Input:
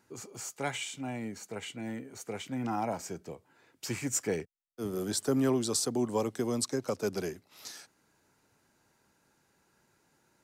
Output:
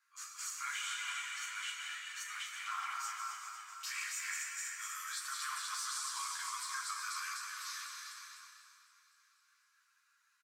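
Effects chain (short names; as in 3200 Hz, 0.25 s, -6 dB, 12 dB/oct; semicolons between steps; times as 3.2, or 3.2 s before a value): regenerating reverse delay 0.125 s, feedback 83%, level -9 dB; de-esser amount 55%; Chebyshev high-pass 1100 Hz, order 6; gate -57 dBFS, range -7 dB; high shelf 2100 Hz -8.5 dB; limiter -38.5 dBFS, peak gain reduction 9.5 dB; doubler 37 ms -6 dB; non-linear reverb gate 0.44 s flat, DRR 4 dB; ensemble effect; gain +9.5 dB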